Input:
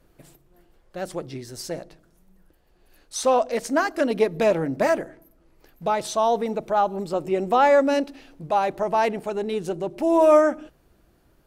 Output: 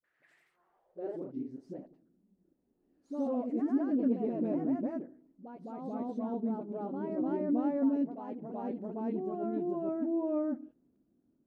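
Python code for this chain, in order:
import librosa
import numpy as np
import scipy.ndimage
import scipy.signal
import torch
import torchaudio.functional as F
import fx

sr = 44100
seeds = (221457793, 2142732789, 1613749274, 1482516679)

y = fx.filter_sweep_bandpass(x, sr, from_hz=1800.0, to_hz=250.0, start_s=0.34, end_s=1.23, q=5.3)
y = fx.echo_pitch(y, sr, ms=101, semitones=1, count=2, db_per_echo=-3.0)
y = fx.dispersion(y, sr, late='highs', ms=42.0, hz=460.0)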